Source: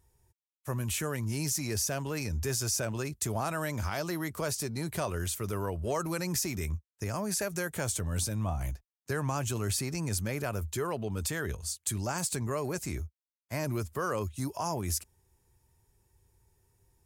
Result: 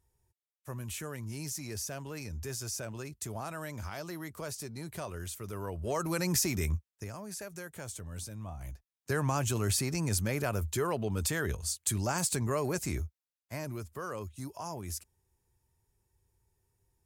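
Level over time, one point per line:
0:05.47 −7 dB
0:06.26 +2.5 dB
0:06.76 +2.5 dB
0:07.17 −10 dB
0:08.58 −10 dB
0:09.14 +1.5 dB
0:13.04 +1.5 dB
0:13.74 −7 dB

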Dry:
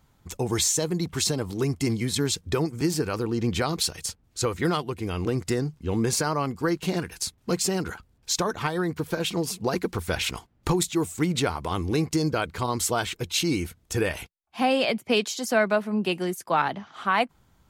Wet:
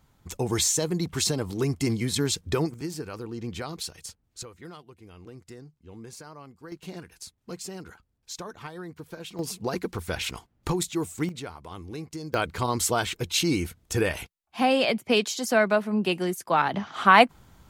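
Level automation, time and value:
−0.5 dB
from 0:02.74 −9 dB
from 0:04.43 −19 dB
from 0:06.72 −12.5 dB
from 0:09.39 −3.5 dB
from 0:11.29 −12.5 dB
from 0:12.34 +0.5 dB
from 0:16.74 +7.5 dB

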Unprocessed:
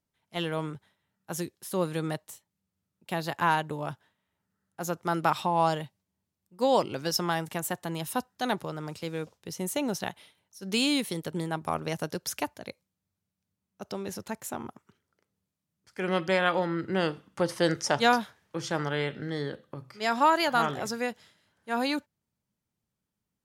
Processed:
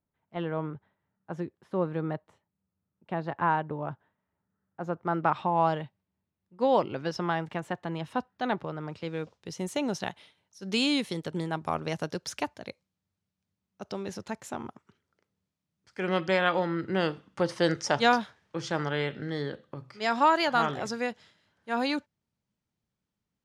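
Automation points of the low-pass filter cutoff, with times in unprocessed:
0:04.90 1,500 Hz
0:05.81 2,700 Hz
0:08.87 2,700 Hz
0:09.49 6,200 Hz

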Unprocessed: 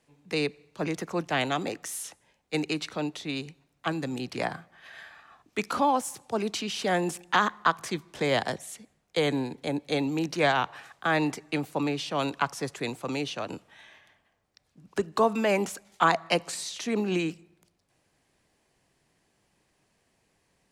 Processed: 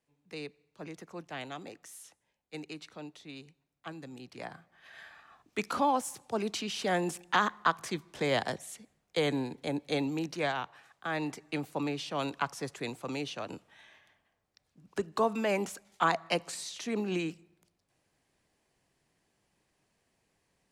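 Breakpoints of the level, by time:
0:04.35 −13.5 dB
0:05.06 −3.5 dB
0:10.03 −3.5 dB
0:10.79 −11.5 dB
0:11.59 −5 dB

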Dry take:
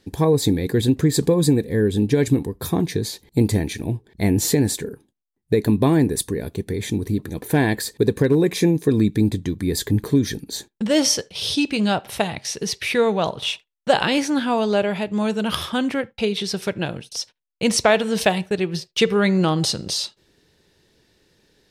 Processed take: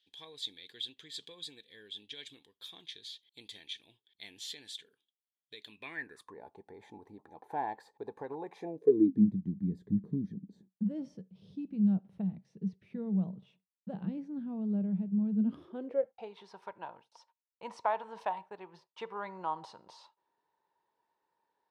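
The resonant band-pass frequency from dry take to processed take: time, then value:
resonant band-pass, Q 9.8
0:05.68 3,300 Hz
0:06.39 840 Hz
0:08.59 840 Hz
0:09.26 190 Hz
0:15.31 190 Hz
0:16.34 940 Hz

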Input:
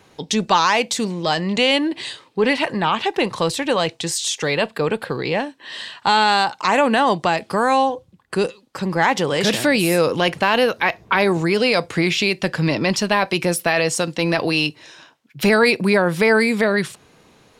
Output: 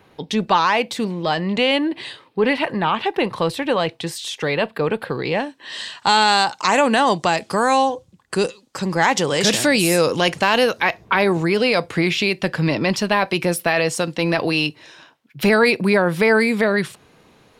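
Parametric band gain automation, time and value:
parametric band 6,900 Hz 1.1 octaves
0:04.82 −12 dB
0:05.45 −1.5 dB
0:05.86 +7.5 dB
0:10.66 +7.5 dB
0:11.20 −4.5 dB

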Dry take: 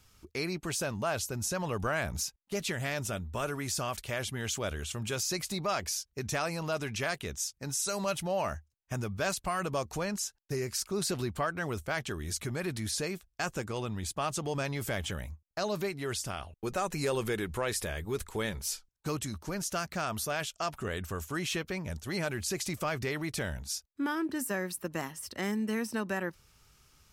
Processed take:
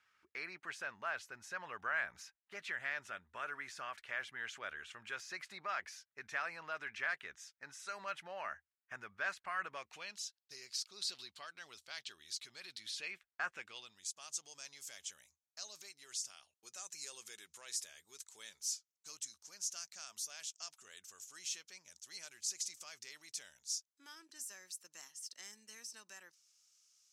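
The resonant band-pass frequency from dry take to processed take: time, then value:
resonant band-pass, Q 2.5
0:09.67 1,700 Hz
0:10.27 4,200 Hz
0:12.79 4,200 Hz
0:13.41 1,400 Hz
0:13.99 6,300 Hz

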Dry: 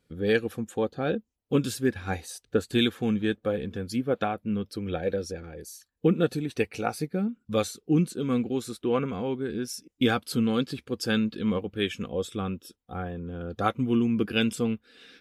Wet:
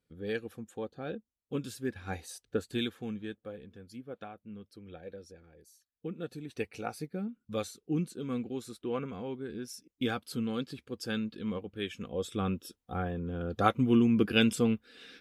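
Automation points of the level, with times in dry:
0:01.72 −11 dB
0:02.32 −5 dB
0:03.66 −17 dB
0:06.12 −17 dB
0:06.63 −8.5 dB
0:11.93 −8.5 dB
0:12.48 0 dB

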